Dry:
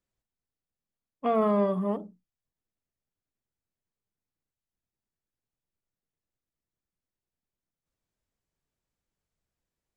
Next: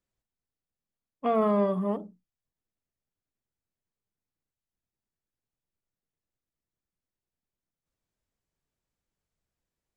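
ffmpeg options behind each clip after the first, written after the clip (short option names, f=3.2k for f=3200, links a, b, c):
-af anull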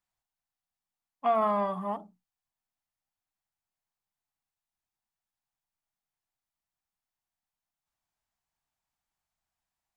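-af "lowshelf=f=610:t=q:w=3:g=-7.5"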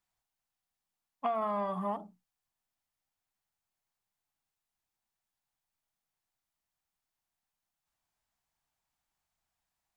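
-af "acompressor=threshold=-32dB:ratio=5,volume=2dB"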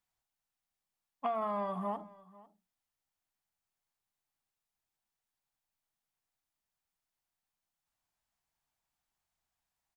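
-af "aecho=1:1:497:0.0841,volume=-2dB"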